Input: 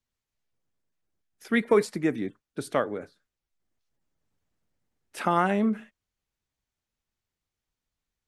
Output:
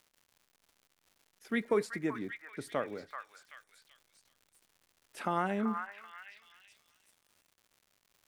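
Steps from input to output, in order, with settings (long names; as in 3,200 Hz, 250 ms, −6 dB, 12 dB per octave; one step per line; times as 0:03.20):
echo through a band-pass that steps 383 ms, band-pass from 1,400 Hz, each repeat 0.7 octaves, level −3 dB
surface crackle 200 per second −44 dBFS
level −8.5 dB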